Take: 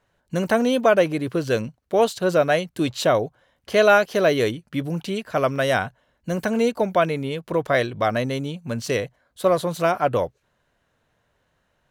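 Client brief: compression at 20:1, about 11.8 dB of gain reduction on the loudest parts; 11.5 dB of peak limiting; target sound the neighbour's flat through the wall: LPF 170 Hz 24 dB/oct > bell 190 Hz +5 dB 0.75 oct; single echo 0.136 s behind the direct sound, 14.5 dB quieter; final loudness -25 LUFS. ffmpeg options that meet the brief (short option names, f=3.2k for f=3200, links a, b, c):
-af "acompressor=threshold=-23dB:ratio=20,alimiter=level_in=0.5dB:limit=-24dB:level=0:latency=1,volume=-0.5dB,lowpass=f=170:w=0.5412,lowpass=f=170:w=1.3066,equalizer=f=190:t=o:w=0.75:g=5,aecho=1:1:136:0.188,volume=15.5dB"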